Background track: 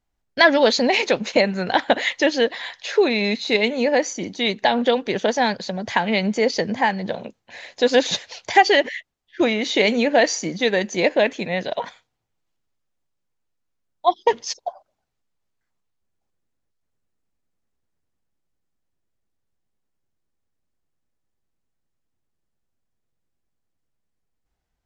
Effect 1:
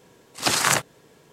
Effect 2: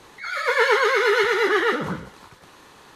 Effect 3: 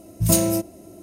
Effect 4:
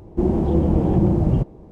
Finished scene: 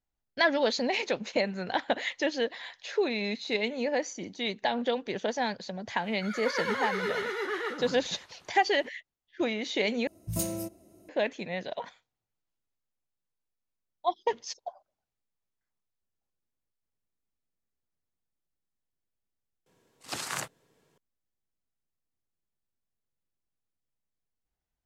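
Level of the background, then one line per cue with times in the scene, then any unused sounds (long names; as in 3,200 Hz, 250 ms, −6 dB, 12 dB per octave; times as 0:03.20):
background track −10.5 dB
0:05.98: mix in 2 −13 dB, fades 0.10 s
0:10.07: overwrite with 3 −13.5 dB
0:19.66: mix in 1 −14.5 dB
not used: 4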